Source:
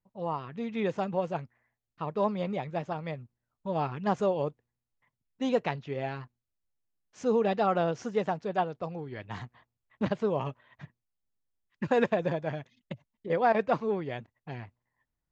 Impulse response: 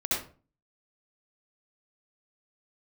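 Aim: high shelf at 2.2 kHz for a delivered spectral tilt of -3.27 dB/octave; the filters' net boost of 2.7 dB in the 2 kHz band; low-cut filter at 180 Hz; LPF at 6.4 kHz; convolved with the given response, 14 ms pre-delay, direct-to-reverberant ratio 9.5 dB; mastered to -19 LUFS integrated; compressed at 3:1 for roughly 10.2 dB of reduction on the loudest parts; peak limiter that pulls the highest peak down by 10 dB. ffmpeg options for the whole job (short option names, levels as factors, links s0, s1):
-filter_complex "[0:a]highpass=180,lowpass=6400,equalizer=f=2000:t=o:g=7.5,highshelf=f=2200:g=-8,acompressor=threshold=0.0178:ratio=3,alimiter=level_in=2.11:limit=0.0631:level=0:latency=1,volume=0.473,asplit=2[s0][s1];[1:a]atrim=start_sample=2205,adelay=14[s2];[s1][s2]afir=irnorm=-1:irlink=0,volume=0.133[s3];[s0][s3]amix=inputs=2:normalize=0,volume=13.3"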